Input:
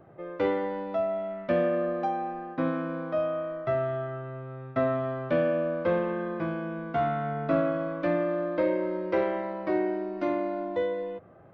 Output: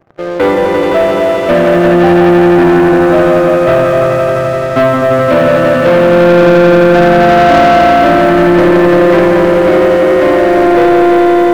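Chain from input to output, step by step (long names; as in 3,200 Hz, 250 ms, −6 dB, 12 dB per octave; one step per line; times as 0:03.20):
leveller curve on the samples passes 1
on a send: echo that builds up and dies away 86 ms, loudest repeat 5, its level −4 dB
on the sum: leveller curve on the samples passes 3
level +4.5 dB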